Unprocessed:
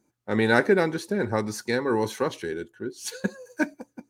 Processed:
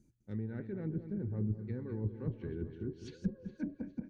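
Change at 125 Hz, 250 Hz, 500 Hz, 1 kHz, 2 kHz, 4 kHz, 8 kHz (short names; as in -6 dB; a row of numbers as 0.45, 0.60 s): -2.5 dB, -10.5 dB, -20.0 dB, -32.0 dB, -31.0 dB, under -25 dB, under -30 dB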